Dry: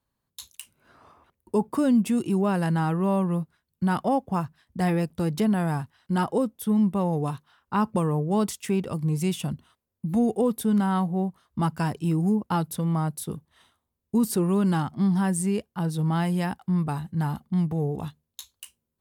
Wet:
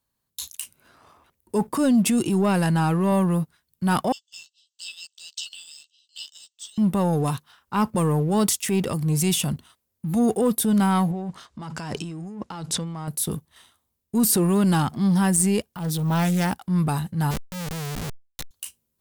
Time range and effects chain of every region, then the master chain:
1.71–3.12 HPF 55 Hz + high shelf 12000 Hz -6.5 dB
4.12–6.78 brick-wall FIR band-pass 2600–8400 Hz + doubler 13 ms -5 dB
11.11–13.08 LPF 7600 Hz 24 dB/oct + low shelf 86 Hz -9 dB + negative-ratio compressor -36 dBFS
15.73–16.56 transient shaper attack -9 dB, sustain -1 dB + careless resampling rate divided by 2×, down none, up hold + Doppler distortion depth 0.3 ms
17.31–18.51 compressor 8:1, threshold -32 dBFS + Schmitt trigger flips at -37.5 dBFS + power-law curve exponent 0.35
whole clip: high shelf 3200 Hz +9.5 dB; transient shaper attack -5 dB, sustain +4 dB; sample leveller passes 1

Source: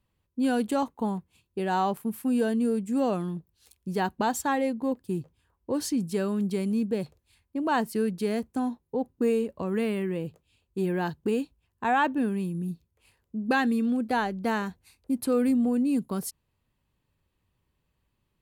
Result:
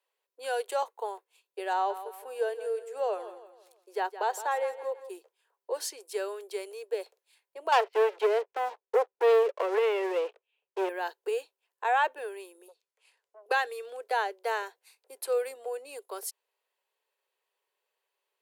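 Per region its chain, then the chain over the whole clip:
1.73–5.1 high shelf 2700 Hz -7.5 dB + feedback echo 0.165 s, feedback 40%, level -13 dB
7.72–10.89 elliptic band-pass 100–2900 Hz, stop band 50 dB + sample leveller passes 3
12.68–13.46 LPF 9200 Hz + low shelf 450 Hz -11 dB + core saturation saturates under 410 Hz
whole clip: steep high-pass 400 Hz 72 dB/oct; notch 1200 Hz, Q 14; gain -1 dB

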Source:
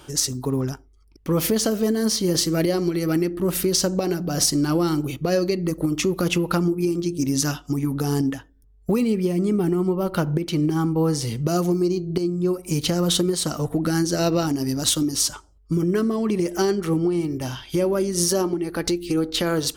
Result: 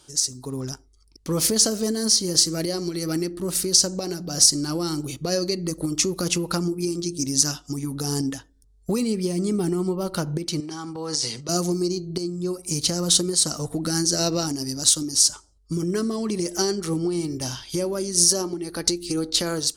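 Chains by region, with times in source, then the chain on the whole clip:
10.6–11.49 HPF 820 Hz 6 dB/oct + transient shaper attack -2 dB, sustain +10 dB + air absorption 73 m
whole clip: dynamic EQ 3600 Hz, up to -4 dB, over -44 dBFS, Q 2.6; AGC; band shelf 6200 Hz +12 dB; gain -12 dB

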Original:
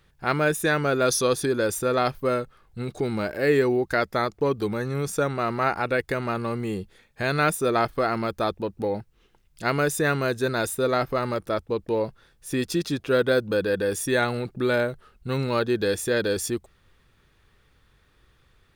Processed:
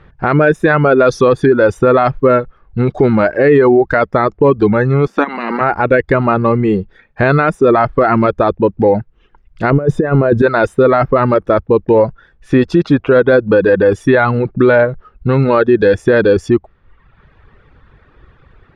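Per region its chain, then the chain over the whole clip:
5.06–5.6 spectral limiter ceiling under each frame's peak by 20 dB + resonant low shelf 160 Hz -13 dB, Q 3 + level quantiser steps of 11 dB
9.7–10.42 negative-ratio compressor -27 dBFS, ratio -0.5 + tilt shelf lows +8 dB, about 1100 Hz
whole clip: reverb removal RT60 0.94 s; LPF 1700 Hz 12 dB/oct; maximiser +19.5 dB; gain -1 dB

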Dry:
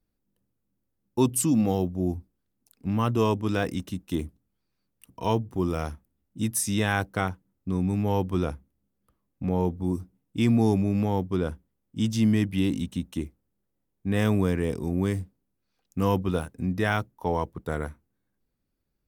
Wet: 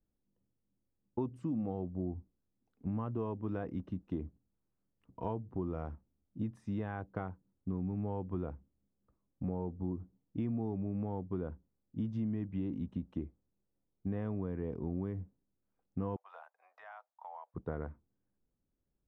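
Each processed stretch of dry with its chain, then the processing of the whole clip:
16.16–17.54 steep high-pass 670 Hz 48 dB/oct + compressor, threshold -38 dBFS
whole clip: compressor, threshold -28 dBFS; LPF 1100 Hz 12 dB/oct; gain -4.5 dB

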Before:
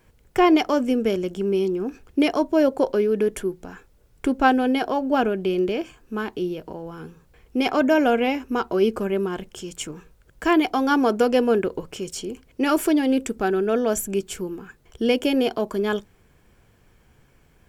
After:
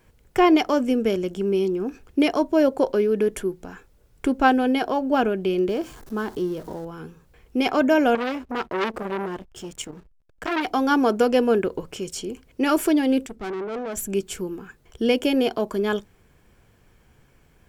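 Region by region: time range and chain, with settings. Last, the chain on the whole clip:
5.69–6.85 zero-crossing step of -40 dBFS + bell 2500 Hz -9 dB 0.68 oct
8.15–10.66 backlash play -41 dBFS + core saturation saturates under 2300 Hz
13.26–14.02 high shelf 4600 Hz -10 dB + tube stage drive 27 dB, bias 0.45 + three-band expander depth 100%
whole clip: dry

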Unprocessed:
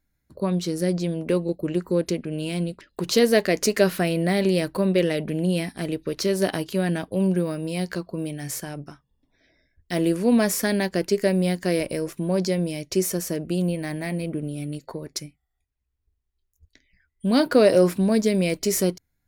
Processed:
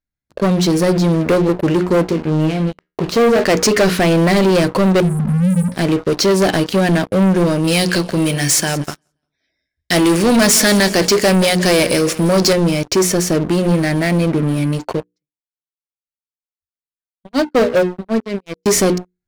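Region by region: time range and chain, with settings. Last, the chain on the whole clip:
2.03–3.44 LPF 1500 Hz 6 dB/oct + sample leveller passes 1 + resonator 78 Hz, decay 0.3 s, mix 80%
5–5.72 brick-wall FIR band-stop 260–7400 Hz + low shelf 100 Hz +4 dB
7.64–12.53 HPF 43 Hz + high shelf 2000 Hz +10.5 dB + feedback echo 0.174 s, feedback 43%, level -19 dB
15–18.66 tremolo 5.4 Hz, depth 71% + air absorption 93 m + upward expander 2.5:1, over -35 dBFS
whole clip: LPF 7600 Hz 12 dB/oct; notches 60/120/180/240/300/360/420/480 Hz; sample leveller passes 5; gain -3 dB

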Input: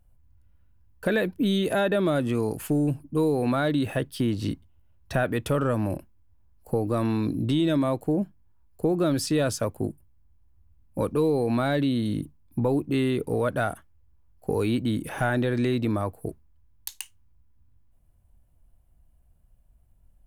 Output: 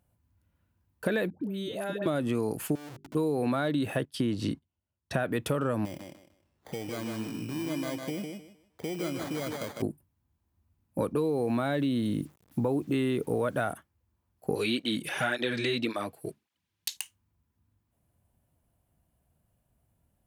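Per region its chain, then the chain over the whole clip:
1.3–2.06 compressor 10:1, threshold -30 dBFS + dispersion highs, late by 0.111 s, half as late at 660 Hz
2.75–3.15 compressor 3:1, threshold -43 dBFS + Schmitt trigger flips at -48 dBFS + notches 50/100/150/200/250/300/350/400 Hz
4.05–5.2 LPF 11000 Hz + gate -45 dBFS, range -14 dB
5.85–9.82 compressor 2:1, threshold -40 dBFS + sample-rate reducer 2700 Hz + thinning echo 0.154 s, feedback 25%, high-pass 160 Hz, level -4 dB
11.3–13.72 bell 4600 Hz -11 dB 0.21 oct + requantised 10-bit, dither none
14.55–16.97 weighting filter D + tape flanging out of phase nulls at 1.8 Hz, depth 4.8 ms
whole clip: HPF 120 Hz 12 dB/oct; compressor, threshold -24 dBFS

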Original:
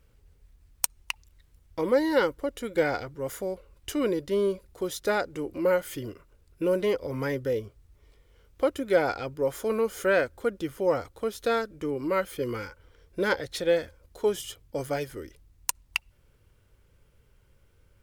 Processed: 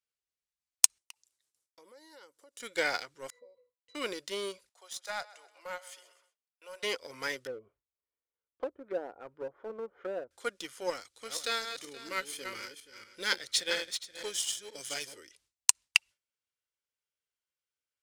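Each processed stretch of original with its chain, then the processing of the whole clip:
0.98–2.6 HPF 440 Hz 6 dB/oct + bell 2400 Hz -12.5 dB 2.8 oct + compressor 3:1, threshold -44 dBFS
3.3–3.95 bell 470 Hz +14 dB 0.36 oct + octave resonator B, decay 0.18 s
4.69–6.83 ladder high-pass 610 Hz, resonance 50% + feedback echo 0.128 s, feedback 46%, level -14.5 dB
7.47–10.31 treble ducked by the level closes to 550 Hz, closed at -23 dBFS + LPF 1100 Hz
10.9–15.18 regenerating reverse delay 0.238 s, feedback 43%, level -6 dB + bell 800 Hz -8 dB 1.9 oct
whole clip: weighting filter ITU-R 468; gate with hold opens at -52 dBFS; sample leveller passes 1; gain -6.5 dB

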